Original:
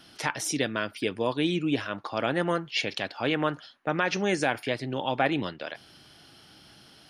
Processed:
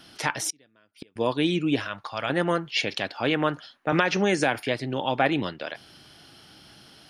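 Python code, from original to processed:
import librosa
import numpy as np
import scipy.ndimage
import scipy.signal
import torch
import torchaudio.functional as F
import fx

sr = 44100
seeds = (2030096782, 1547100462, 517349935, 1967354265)

y = fx.gate_flip(x, sr, shuts_db=-28.0, range_db=-34, at=(0.5, 1.16))
y = fx.peak_eq(y, sr, hz=320.0, db=-14.0, octaves=1.6, at=(1.88, 2.3))
y = fx.band_squash(y, sr, depth_pct=100, at=(3.92, 4.6))
y = y * 10.0 ** (2.5 / 20.0)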